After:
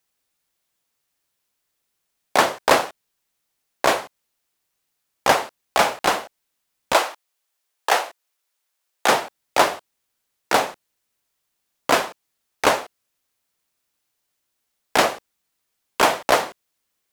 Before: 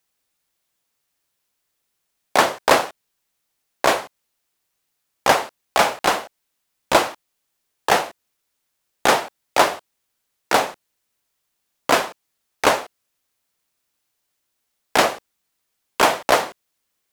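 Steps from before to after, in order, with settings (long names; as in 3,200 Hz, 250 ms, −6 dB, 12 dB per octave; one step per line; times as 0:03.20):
0:06.93–0:09.09: high-pass filter 500 Hz 12 dB per octave
level −1 dB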